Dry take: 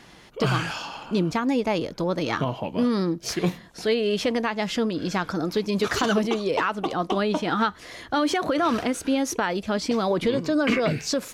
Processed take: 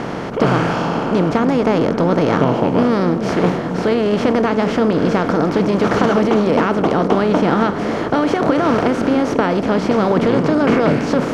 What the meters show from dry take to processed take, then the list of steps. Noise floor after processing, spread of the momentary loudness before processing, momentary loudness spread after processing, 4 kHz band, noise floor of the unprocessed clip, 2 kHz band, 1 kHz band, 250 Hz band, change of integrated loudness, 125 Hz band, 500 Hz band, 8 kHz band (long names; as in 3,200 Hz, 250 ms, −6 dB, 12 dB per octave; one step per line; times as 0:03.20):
−22 dBFS, 5 LU, 3 LU, +1.0 dB, −49 dBFS, +5.5 dB, +8.5 dB, +9.5 dB, +9.0 dB, +10.0 dB, +9.5 dB, can't be measured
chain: compressor on every frequency bin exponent 0.4
low-pass filter 1,100 Hz 6 dB per octave
echo through a band-pass that steps 269 ms, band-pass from 210 Hz, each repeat 0.7 octaves, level −6 dB
level +3.5 dB